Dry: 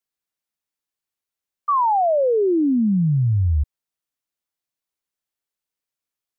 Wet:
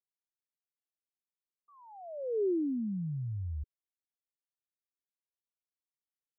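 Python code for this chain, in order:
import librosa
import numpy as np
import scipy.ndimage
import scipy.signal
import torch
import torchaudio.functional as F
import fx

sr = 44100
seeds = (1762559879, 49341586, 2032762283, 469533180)

y = fx.ladder_lowpass(x, sr, hz=470.0, resonance_pct=50)
y = y * librosa.db_to_amplitude(-9.0)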